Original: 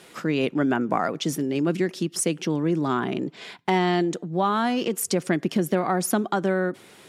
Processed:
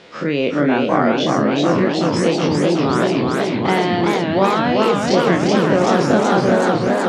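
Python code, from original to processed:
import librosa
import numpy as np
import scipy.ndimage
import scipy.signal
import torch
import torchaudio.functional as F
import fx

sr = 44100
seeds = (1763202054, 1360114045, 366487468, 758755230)

y = fx.spec_dilate(x, sr, span_ms=60)
y = scipy.signal.sosfilt(scipy.signal.butter(4, 5500.0, 'lowpass', fs=sr, output='sos'), y)
y = fx.peak_eq(y, sr, hz=530.0, db=6.0, octaves=0.43)
y = fx.doubler(y, sr, ms=41.0, db=-11)
y = fx.echo_warbled(y, sr, ms=377, feedback_pct=78, rate_hz=2.8, cents=186, wet_db=-3)
y = F.gain(torch.from_numpy(y), 1.0).numpy()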